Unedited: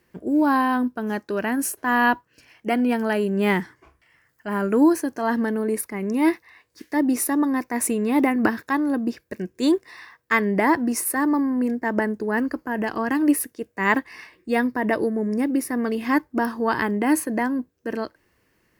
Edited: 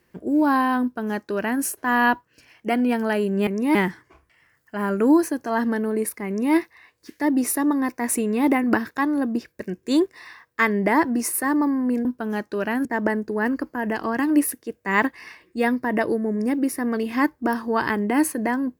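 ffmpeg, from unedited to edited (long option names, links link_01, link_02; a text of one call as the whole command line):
ffmpeg -i in.wav -filter_complex "[0:a]asplit=5[link_01][link_02][link_03][link_04][link_05];[link_01]atrim=end=3.472[link_06];[link_02]atrim=start=5.988:end=6.272[link_07];[link_03]atrim=start=3.468:end=11.772[link_08];[link_04]atrim=start=0.818:end=1.622[link_09];[link_05]atrim=start=11.768[link_10];[link_06][link_07]acrossfade=duration=0.004:curve1=hsin:curve2=hsin[link_11];[link_11][link_08]acrossfade=duration=0.004:curve1=hsin:curve2=hsin[link_12];[link_12][link_09]acrossfade=duration=0.004:curve1=hsin:curve2=hsin[link_13];[link_13][link_10]acrossfade=duration=0.004:curve1=hsin:curve2=hsin" out.wav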